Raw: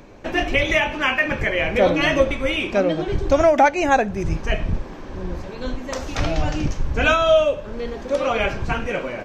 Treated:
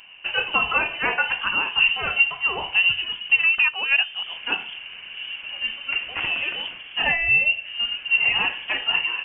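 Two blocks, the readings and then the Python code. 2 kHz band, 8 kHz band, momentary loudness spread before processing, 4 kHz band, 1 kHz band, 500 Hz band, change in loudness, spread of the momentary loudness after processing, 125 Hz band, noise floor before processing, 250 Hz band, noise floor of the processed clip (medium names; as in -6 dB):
+3.5 dB, under -40 dB, 14 LU, +7.0 dB, -8.0 dB, -19.5 dB, 0.0 dB, 12 LU, under -15 dB, -35 dBFS, -19.0 dB, -40 dBFS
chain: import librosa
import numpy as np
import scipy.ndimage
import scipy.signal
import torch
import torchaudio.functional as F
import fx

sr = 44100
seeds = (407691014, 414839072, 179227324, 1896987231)

y = scipy.signal.sosfilt(scipy.signal.butter(2, 360.0, 'highpass', fs=sr, output='sos'), x)
y = fx.peak_eq(y, sr, hz=500.0, db=8.5, octaves=0.67)
y = fx.rider(y, sr, range_db=3, speed_s=0.5)
y = fx.freq_invert(y, sr, carrier_hz=3300)
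y = F.gain(torch.from_numpy(y), -5.0).numpy()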